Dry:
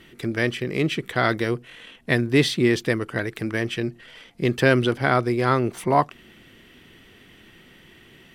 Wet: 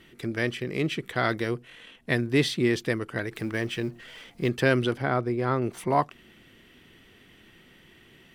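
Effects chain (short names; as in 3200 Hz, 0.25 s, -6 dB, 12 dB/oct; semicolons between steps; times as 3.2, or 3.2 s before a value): 3.31–4.49 G.711 law mismatch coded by mu; 5.02–5.62 high shelf 2100 Hz -10.5 dB; gain -4.5 dB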